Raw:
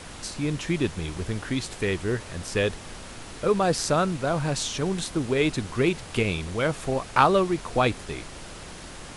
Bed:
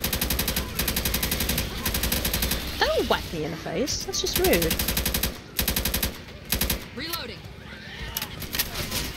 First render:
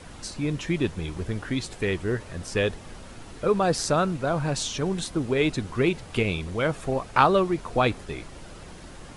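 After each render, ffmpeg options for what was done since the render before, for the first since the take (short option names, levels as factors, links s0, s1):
-af "afftdn=nr=7:nf=-41"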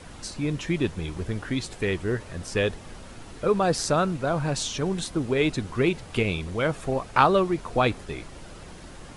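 -af anull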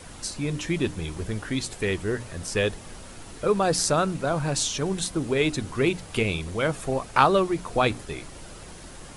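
-af "highshelf=f=7700:g=11.5,bandreject=f=60:t=h:w=6,bandreject=f=120:t=h:w=6,bandreject=f=180:t=h:w=6,bandreject=f=240:t=h:w=6,bandreject=f=300:t=h:w=6"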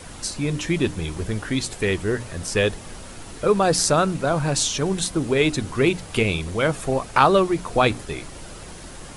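-af "volume=1.58,alimiter=limit=0.794:level=0:latency=1"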